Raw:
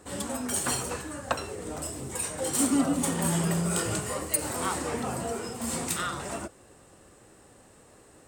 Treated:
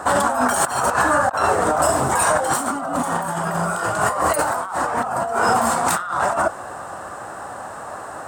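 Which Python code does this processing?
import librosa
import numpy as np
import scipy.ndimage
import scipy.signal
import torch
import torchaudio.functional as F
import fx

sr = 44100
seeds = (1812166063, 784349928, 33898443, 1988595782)

y = scipy.signal.sosfilt(scipy.signal.butter(2, 69.0, 'highpass', fs=sr, output='sos'), x)
y = fx.band_shelf(y, sr, hz=1000.0, db=16.0, octaves=1.7)
y = fx.over_compress(y, sr, threshold_db=-29.0, ratio=-1.0)
y = y * 10.0 ** (8.0 / 20.0)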